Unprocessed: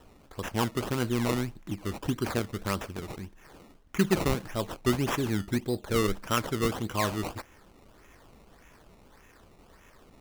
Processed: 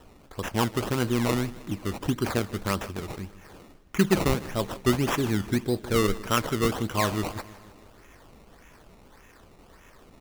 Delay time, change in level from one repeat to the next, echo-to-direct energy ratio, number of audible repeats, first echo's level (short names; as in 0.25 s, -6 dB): 0.157 s, -4.5 dB, -16.5 dB, 4, -18.5 dB